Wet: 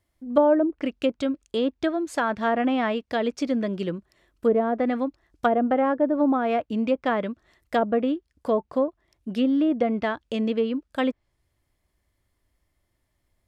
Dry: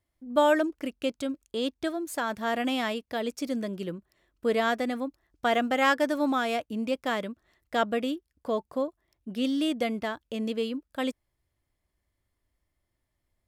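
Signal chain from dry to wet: treble ducked by the level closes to 650 Hz, closed at -21.5 dBFS; gain +6 dB

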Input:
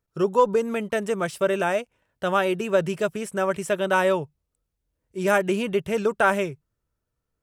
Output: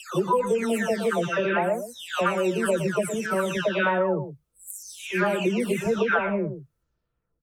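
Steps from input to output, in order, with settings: spectral delay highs early, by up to 0.598 s; compressor 5:1, threshold -23 dBFS, peak gain reduction 8.5 dB; outdoor echo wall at 20 m, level -10 dB; gain +3.5 dB

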